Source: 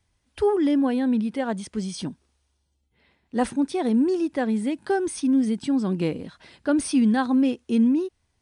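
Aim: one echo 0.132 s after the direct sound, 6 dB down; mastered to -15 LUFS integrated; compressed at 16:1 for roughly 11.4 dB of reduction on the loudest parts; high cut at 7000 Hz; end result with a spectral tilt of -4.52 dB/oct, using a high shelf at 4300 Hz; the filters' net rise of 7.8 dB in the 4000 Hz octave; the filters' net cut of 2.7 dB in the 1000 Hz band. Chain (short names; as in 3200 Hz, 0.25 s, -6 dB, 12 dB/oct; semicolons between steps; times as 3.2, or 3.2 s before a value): LPF 7000 Hz; bell 1000 Hz -4.5 dB; bell 4000 Hz +8.5 dB; high shelf 4300 Hz +4 dB; compressor 16:1, threshold -28 dBFS; echo 0.132 s -6 dB; gain +17 dB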